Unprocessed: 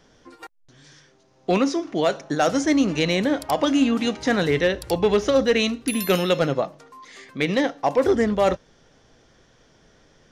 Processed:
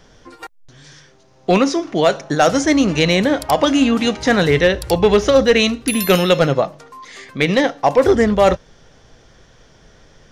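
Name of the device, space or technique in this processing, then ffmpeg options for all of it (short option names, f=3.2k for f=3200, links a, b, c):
low shelf boost with a cut just above: -af "lowshelf=f=87:g=6.5,equalizer=f=280:t=o:w=0.81:g=-3.5,volume=7dB"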